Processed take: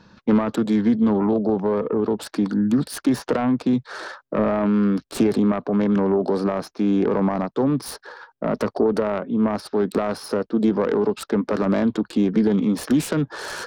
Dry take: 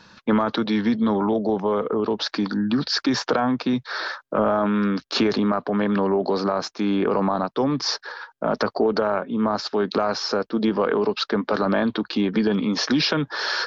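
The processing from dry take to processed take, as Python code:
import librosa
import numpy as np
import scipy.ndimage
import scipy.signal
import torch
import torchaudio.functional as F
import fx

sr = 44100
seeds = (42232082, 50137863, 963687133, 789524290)

y = fx.self_delay(x, sr, depth_ms=0.14)
y = fx.tilt_shelf(y, sr, db=6.0, hz=790.0)
y = y * 10.0 ** (-2.0 / 20.0)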